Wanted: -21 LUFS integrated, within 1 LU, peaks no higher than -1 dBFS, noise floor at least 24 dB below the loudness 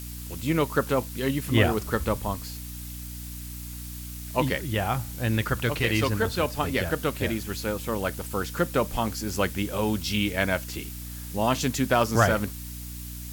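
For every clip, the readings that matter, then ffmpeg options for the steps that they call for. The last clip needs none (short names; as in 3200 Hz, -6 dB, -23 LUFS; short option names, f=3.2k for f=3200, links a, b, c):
hum 60 Hz; harmonics up to 300 Hz; hum level -36 dBFS; noise floor -38 dBFS; noise floor target -52 dBFS; loudness -27.5 LUFS; peak -8.5 dBFS; loudness target -21.0 LUFS
-> -af "bandreject=f=60:t=h:w=6,bandreject=f=120:t=h:w=6,bandreject=f=180:t=h:w=6,bandreject=f=240:t=h:w=6,bandreject=f=300:t=h:w=6"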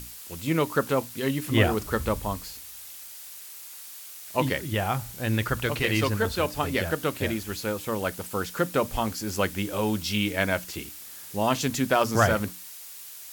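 hum none; noise floor -43 dBFS; noise floor target -51 dBFS
-> -af "afftdn=nr=8:nf=-43"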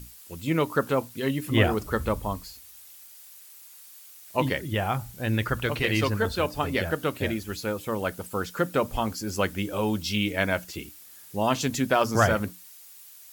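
noise floor -49 dBFS; noise floor target -51 dBFS
-> -af "afftdn=nr=6:nf=-49"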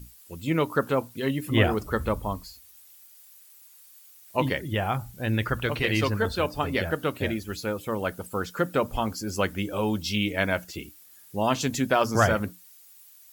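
noise floor -53 dBFS; loudness -27.0 LUFS; peak -8.5 dBFS; loudness target -21.0 LUFS
-> -af "volume=6dB"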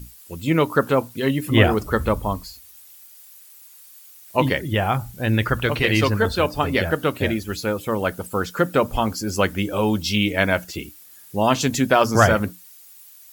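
loudness -21.0 LUFS; peak -2.5 dBFS; noise floor -47 dBFS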